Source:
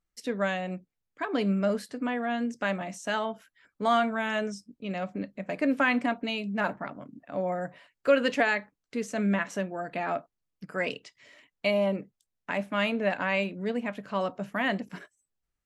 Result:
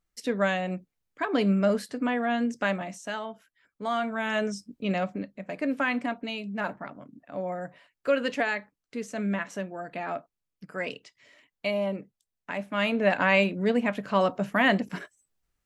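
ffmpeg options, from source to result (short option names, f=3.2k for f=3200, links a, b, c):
-af "volume=23dB,afade=t=out:st=2.58:d=0.59:silence=0.398107,afade=t=in:st=3.95:d=0.94:silence=0.266073,afade=t=out:st=4.89:d=0.38:silence=0.354813,afade=t=in:st=12.66:d=0.59:silence=0.375837"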